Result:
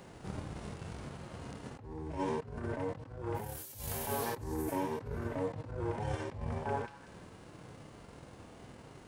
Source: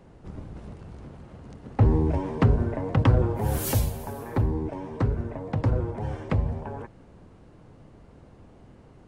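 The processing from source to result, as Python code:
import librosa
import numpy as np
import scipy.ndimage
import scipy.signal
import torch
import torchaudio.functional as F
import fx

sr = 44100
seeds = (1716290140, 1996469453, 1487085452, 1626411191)

p1 = fx.transient(x, sr, attack_db=6, sustain_db=-6)
p2 = fx.tilt_eq(p1, sr, slope=2.5)
p3 = p2 + fx.echo_stepped(p2, sr, ms=188, hz=1400.0, octaves=0.7, feedback_pct=70, wet_db=-12, dry=0)
p4 = fx.over_compress(p3, sr, threshold_db=-38.0, ratio=-1.0)
p5 = fx.hpss(p4, sr, part='percussive', gain_db=-15)
y = p5 * 10.0 ** (1.0 / 20.0)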